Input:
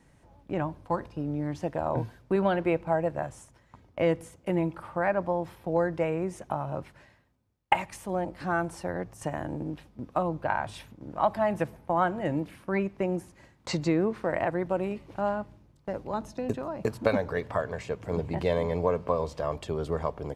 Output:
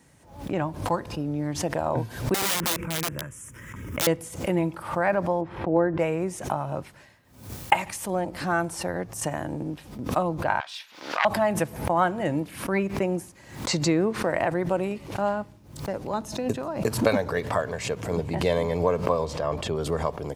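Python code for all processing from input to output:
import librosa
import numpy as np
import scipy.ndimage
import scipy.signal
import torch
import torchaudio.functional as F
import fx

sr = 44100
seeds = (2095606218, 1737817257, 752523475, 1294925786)

y = fx.chain(x, sr, fx.fixed_phaser(hz=1800.0, stages=4),
    fx.overflow_wrap(gain_db=27.0),
    fx.pre_swell(db_per_s=32.0), at=(2.34, 4.07))
y = fx.chain(y, sr, fx.lowpass(hz=1800.0, slope=12),
    fx.peak_eq(hz=330.0, db=6.0, octaves=0.25), at=(5.41, 5.99))
y = fx.chain(y, sr, fx.self_delay(depth_ms=0.21),
    fx.highpass(hz=1500.0, slope=12),
    fx.high_shelf_res(hz=6400.0, db=-10.5, q=1.5), at=(10.6, 11.25))
y = fx.chain(y, sr, fx.lowpass(hz=3500.0, slope=6),
    fx.sustainer(db_per_s=76.0), at=(19.25, 19.76))
y = scipy.signal.sosfilt(scipy.signal.butter(2, 67.0, 'highpass', fs=sr, output='sos'), y)
y = fx.high_shelf(y, sr, hz=4500.0, db=10.0)
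y = fx.pre_swell(y, sr, db_per_s=100.0)
y = y * 10.0 ** (2.5 / 20.0)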